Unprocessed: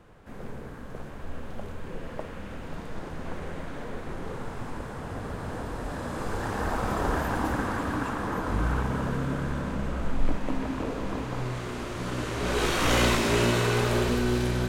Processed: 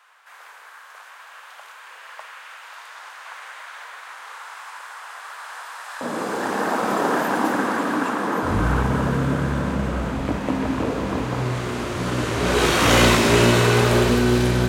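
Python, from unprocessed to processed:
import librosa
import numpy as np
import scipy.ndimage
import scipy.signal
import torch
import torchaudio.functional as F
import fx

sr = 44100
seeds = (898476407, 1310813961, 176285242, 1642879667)

y = fx.highpass(x, sr, hz=fx.steps((0.0, 1000.0), (6.01, 200.0), (8.43, 60.0)), slope=24)
y = F.gain(torch.from_numpy(y), 8.0).numpy()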